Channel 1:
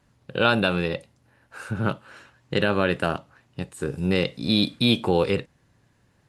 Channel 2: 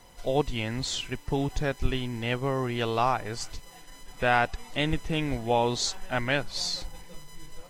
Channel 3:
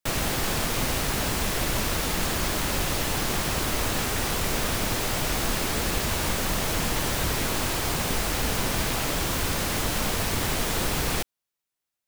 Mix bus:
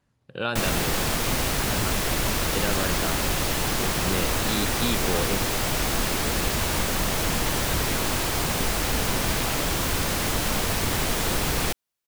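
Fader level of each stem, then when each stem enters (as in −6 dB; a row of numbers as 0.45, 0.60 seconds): −8.0 dB, muted, +1.5 dB; 0.00 s, muted, 0.50 s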